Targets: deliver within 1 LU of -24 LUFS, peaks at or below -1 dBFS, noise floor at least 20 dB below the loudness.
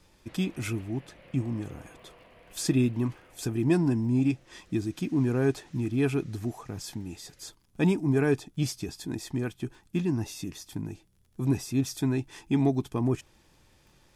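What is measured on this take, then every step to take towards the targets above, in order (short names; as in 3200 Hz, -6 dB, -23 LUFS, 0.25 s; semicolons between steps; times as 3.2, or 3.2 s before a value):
ticks 36/s; loudness -29.5 LUFS; peak -11.5 dBFS; loudness target -24.0 LUFS
-> de-click; gain +5.5 dB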